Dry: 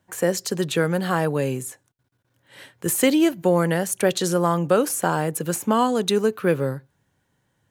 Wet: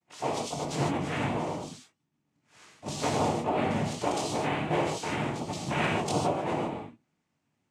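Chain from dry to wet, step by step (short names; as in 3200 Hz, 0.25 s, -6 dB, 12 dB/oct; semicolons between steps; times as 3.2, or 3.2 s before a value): short-time reversal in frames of 50 ms; noise vocoder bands 4; non-linear reverb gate 0.17 s flat, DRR -1 dB; gain -8.5 dB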